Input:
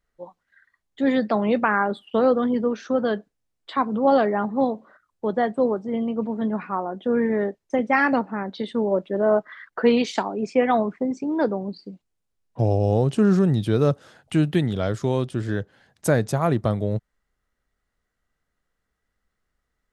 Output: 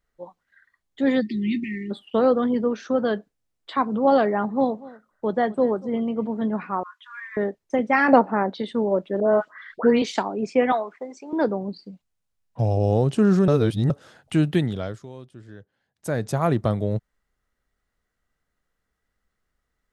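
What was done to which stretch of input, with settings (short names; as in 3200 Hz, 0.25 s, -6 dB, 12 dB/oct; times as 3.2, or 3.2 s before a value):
1.21–1.91 spectral delete 400–1800 Hz
4.46–6.28 echo 0.239 s -20 dB
6.83–7.37 brick-wall FIR high-pass 960 Hz
8.08–8.54 bell 650 Hz +9.5 dB 2.4 oct
9.2–10.02 dispersion highs, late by 0.116 s, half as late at 1600 Hz
10.72–11.33 HPF 640 Hz
11.83–12.77 bell 360 Hz -8.5 dB
13.48–13.9 reverse
14.59–16.41 dip -17.5 dB, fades 0.47 s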